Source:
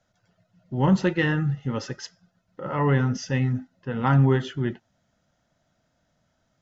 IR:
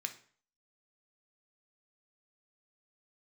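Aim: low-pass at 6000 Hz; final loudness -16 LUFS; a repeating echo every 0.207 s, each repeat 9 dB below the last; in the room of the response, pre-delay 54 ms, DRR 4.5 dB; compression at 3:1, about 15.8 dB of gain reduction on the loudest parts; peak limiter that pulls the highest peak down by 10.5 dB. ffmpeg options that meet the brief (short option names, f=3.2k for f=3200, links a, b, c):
-filter_complex "[0:a]lowpass=6k,acompressor=threshold=-37dB:ratio=3,alimiter=level_in=8dB:limit=-24dB:level=0:latency=1,volume=-8dB,aecho=1:1:207|414|621|828:0.355|0.124|0.0435|0.0152,asplit=2[a][b];[1:a]atrim=start_sample=2205,adelay=54[c];[b][c]afir=irnorm=-1:irlink=0,volume=-4dB[d];[a][d]amix=inputs=2:normalize=0,volume=25dB"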